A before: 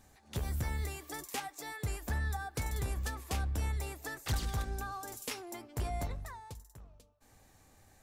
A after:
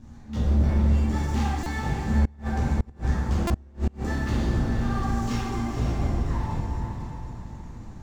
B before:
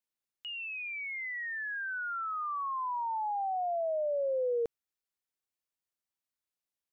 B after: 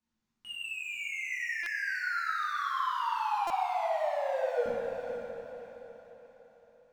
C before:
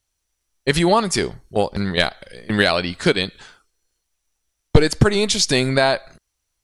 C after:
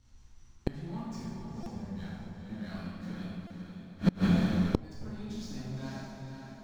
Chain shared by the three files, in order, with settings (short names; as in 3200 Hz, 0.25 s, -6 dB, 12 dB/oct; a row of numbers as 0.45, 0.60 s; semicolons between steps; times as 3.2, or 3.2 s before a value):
EQ curve 240 Hz 0 dB, 360 Hz -12 dB, 560 Hz -21 dB, 940 Hz -9 dB, 1600 Hz -12 dB, 6600 Hz -8 dB, 11000 Hz -27 dB; sample leveller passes 3; overloaded stage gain 5.5 dB; high shelf 2000 Hz -12 dB; power-law curve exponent 0.7; notches 50/100/150/200 Hz; compressor 10:1, threshold -16 dBFS; on a send: diffused feedback echo 0.491 s, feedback 42%, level -6 dB; on the sum: plate-style reverb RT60 1.8 s, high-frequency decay 0.65×, DRR -8.5 dB; flipped gate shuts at -12 dBFS, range -29 dB; stuck buffer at 1.63/3.47, samples 128, times 10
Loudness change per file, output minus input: +11.5, +1.5, -16.0 LU